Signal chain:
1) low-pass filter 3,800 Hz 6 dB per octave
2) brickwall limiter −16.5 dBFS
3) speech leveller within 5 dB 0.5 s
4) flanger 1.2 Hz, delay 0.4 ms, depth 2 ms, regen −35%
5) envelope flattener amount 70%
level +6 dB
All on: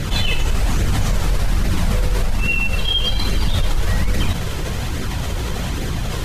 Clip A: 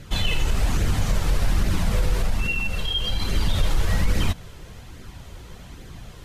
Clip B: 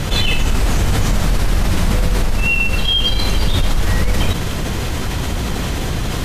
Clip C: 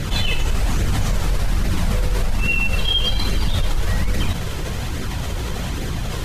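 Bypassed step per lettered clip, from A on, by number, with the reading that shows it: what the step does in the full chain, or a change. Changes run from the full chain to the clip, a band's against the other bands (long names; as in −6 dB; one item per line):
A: 5, change in momentary loudness spread +12 LU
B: 4, change in integrated loudness +3.0 LU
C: 3, change in momentary loudness spread +2 LU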